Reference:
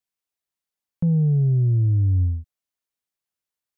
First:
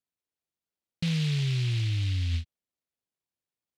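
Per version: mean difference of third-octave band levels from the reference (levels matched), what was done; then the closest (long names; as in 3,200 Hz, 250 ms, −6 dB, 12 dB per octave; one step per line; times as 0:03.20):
13.5 dB: high-pass filter 86 Hz 6 dB per octave
in parallel at −1.5 dB: compressor whose output falls as the input rises −28 dBFS, ratio −0.5
on the sum: high-frequency loss of the air 340 metres
short delay modulated by noise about 3,000 Hz, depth 0.26 ms
level −8 dB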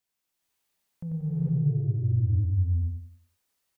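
5.0 dB: compressor whose output falls as the input rises −26 dBFS, ratio −1
brickwall limiter −26.5 dBFS, peak gain reduction 10 dB
repeating echo 92 ms, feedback 36%, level −4 dB
reverb whose tail is shaped and stops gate 490 ms rising, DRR −5 dB
level −4 dB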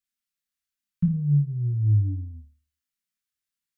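2.0 dB: flat-topped bell 500 Hz −15.5 dB 1.3 octaves
flanger 1.5 Hz, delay 2.3 ms, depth 3.7 ms, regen +9%
Butterworth band-reject 700 Hz, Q 0.8
flutter between parallel walls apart 4.7 metres, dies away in 0.4 s
level +1.5 dB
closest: third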